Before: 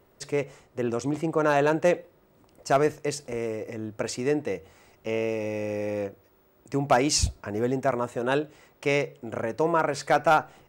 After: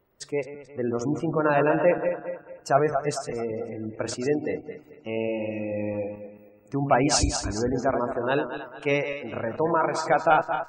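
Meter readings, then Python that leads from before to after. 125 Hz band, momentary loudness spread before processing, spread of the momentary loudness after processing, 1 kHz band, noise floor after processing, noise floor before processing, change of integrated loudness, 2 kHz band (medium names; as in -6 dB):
+1.0 dB, 11 LU, 12 LU, +1.5 dB, -54 dBFS, -61 dBFS, +1.0 dB, +0.5 dB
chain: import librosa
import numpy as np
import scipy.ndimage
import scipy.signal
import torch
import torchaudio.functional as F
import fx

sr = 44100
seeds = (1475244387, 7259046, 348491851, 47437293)

y = fx.reverse_delay_fb(x, sr, ms=110, feedback_pct=68, wet_db=-6.5)
y = fx.spec_gate(y, sr, threshold_db=-30, keep='strong')
y = fx.noise_reduce_blind(y, sr, reduce_db=8)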